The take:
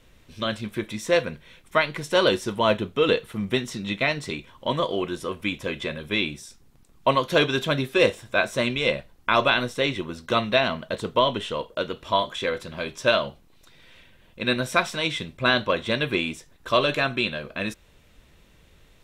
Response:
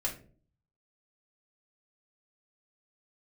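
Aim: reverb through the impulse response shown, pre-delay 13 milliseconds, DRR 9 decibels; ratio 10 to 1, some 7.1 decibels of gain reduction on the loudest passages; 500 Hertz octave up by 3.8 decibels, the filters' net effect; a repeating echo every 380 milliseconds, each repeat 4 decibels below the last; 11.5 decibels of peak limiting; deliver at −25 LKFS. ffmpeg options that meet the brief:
-filter_complex "[0:a]equalizer=frequency=500:width_type=o:gain=4.5,acompressor=threshold=-19dB:ratio=10,alimiter=limit=-18dB:level=0:latency=1,aecho=1:1:380|760|1140|1520|1900|2280|2660|3040|3420:0.631|0.398|0.25|0.158|0.0994|0.0626|0.0394|0.0249|0.0157,asplit=2[link_01][link_02];[1:a]atrim=start_sample=2205,adelay=13[link_03];[link_02][link_03]afir=irnorm=-1:irlink=0,volume=-13dB[link_04];[link_01][link_04]amix=inputs=2:normalize=0,volume=2.5dB"

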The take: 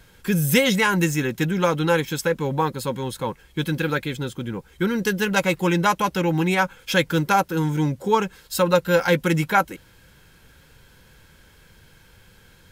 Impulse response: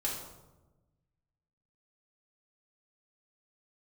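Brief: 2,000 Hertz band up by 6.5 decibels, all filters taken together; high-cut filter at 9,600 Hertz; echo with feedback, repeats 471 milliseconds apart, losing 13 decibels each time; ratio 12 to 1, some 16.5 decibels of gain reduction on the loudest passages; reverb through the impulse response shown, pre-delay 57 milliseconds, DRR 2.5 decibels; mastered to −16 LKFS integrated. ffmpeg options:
-filter_complex "[0:a]lowpass=9600,equalizer=frequency=2000:width_type=o:gain=8.5,acompressor=threshold=-27dB:ratio=12,aecho=1:1:471|942|1413:0.224|0.0493|0.0108,asplit=2[link_01][link_02];[1:a]atrim=start_sample=2205,adelay=57[link_03];[link_02][link_03]afir=irnorm=-1:irlink=0,volume=-6.5dB[link_04];[link_01][link_04]amix=inputs=2:normalize=0,volume=13dB"

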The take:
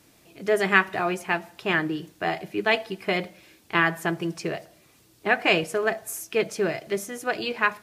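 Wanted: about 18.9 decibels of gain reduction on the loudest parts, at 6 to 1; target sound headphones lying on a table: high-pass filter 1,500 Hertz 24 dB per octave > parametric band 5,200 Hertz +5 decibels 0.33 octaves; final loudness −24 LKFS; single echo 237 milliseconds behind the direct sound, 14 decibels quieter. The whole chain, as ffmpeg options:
ffmpeg -i in.wav -af "acompressor=threshold=-35dB:ratio=6,highpass=frequency=1500:width=0.5412,highpass=frequency=1500:width=1.3066,equalizer=frequency=5200:width_type=o:width=0.33:gain=5,aecho=1:1:237:0.2,volume=19dB" out.wav

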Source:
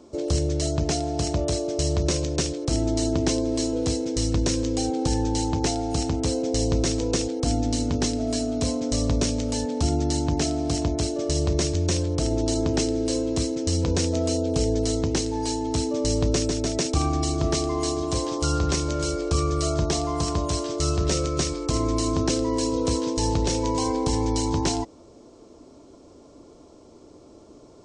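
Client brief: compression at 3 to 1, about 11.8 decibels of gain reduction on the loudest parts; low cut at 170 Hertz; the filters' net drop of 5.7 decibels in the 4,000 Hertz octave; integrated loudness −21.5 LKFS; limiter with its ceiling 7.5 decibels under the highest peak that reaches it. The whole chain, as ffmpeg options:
ffmpeg -i in.wav -af "highpass=170,equalizer=frequency=4000:width_type=o:gain=-8,acompressor=threshold=-38dB:ratio=3,volume=18.5dB,alimiter=limit=-12.5dB:level=0:latency=1" out.wav

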